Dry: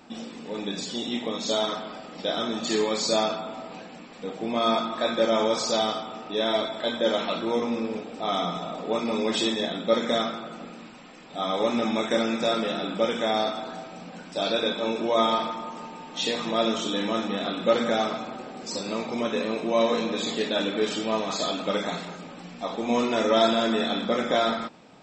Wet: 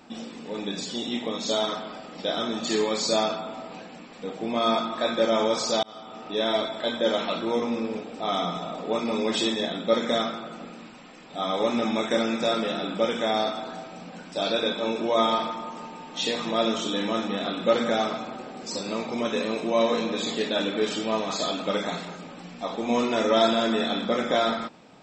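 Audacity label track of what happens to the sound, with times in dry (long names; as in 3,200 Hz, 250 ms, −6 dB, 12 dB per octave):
5.830000	6.290000	fade in
19.250000	19.700000	high-shelf EQ 5,600 Hz +7 dB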